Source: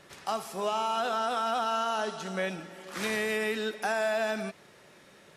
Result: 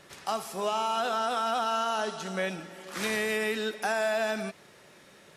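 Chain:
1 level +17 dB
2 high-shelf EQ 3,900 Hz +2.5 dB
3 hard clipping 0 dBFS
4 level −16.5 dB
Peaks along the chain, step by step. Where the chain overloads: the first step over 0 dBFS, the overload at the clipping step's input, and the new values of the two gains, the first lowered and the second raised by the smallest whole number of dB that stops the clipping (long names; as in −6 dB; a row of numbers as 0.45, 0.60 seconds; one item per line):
−2.0, −1.5, −1.5, −18.0 dBFS
no step passes full scale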